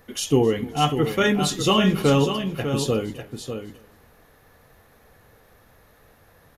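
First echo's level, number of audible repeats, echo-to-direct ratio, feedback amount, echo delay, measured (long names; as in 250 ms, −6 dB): −21.5 dB, 4, −8.0 dB, repeats not evenly spaced, 263 ms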